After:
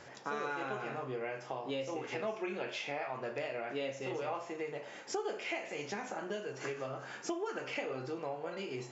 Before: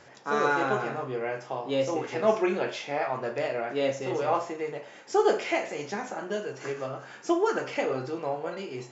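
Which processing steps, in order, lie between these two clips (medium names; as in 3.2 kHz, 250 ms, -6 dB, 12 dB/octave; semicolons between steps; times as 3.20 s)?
dynamic bell 2.6 kHz, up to +6 dB, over -48 dBFS, Q 1.9; compression 4:1, threshold -37 dBFS, peak gain reduction 17 dB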